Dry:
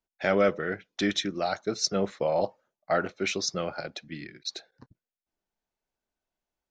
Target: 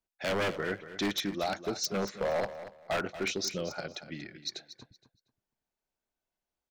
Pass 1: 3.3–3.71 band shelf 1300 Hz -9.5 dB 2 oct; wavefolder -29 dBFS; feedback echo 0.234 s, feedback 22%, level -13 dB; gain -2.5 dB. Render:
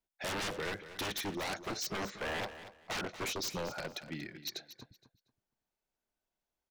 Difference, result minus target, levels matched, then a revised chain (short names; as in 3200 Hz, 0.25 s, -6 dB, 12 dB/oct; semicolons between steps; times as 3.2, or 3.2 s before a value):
wavefolder: distortion +13 dB
3.3–3.71 band shelf 1300 Hz -9.5 dB 2 oct; wavefolder -21.5 dBFS; feedback echo 0.234 s, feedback 22%, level -13 dB; gain -2.5 dB